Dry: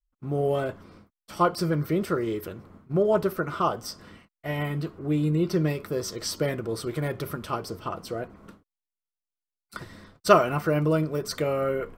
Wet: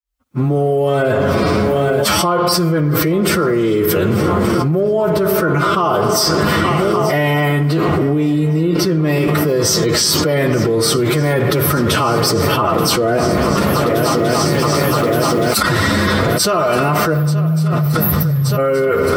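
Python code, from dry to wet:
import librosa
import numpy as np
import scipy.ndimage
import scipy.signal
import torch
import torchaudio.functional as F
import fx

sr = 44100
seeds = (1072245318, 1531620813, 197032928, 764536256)

p1 = fx.fade_in_head(x, sr, length_s=2.21)
p2 = fx.recorder_agc(p1, sr, target_db=-7.5, rise_db_per_s=15.0, max_gain_db=30)
p3 = scipy.signal.sosfilt(scipy.signal.butter(4, 41.0, 'highpass', fs=sr, output='sos'), p2)
p4 = fx.spec_erase(p3, sr, start_s=10.71, length_s=0.91, low_hz=240.0, high_hz=11000.0)
p5 = fx.low_shelf(p4, sr, hz=310.0, db=-2.0)
p6 = 10.0 ** (-7.0 / 20.0) * np.tanh(p5 / 10.0 ** (-7.0 / 20.0))
p7 = p5 + F.gain(torch.from_numpy(p6), -9.0).numpy()
p8 = fx.stretch_vocoder(p7, sr, factor=1.6)
p9 = p8 + fx.echo_swing(p8, sr, ms=1172, ratio=3, feedback_pct=71, wet_db=-20.0, dry=0)
p10 = fx.rev_spring(p9, sr, rt60_s=1.9, pass_ms=(57,), chirp_ms=65, drr_db=12.5)
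p11 = fx.env_flatten(p10, sr, amount_pct=100)
y = F.gain(torch.from_numpy(p11), -5.0).numpy()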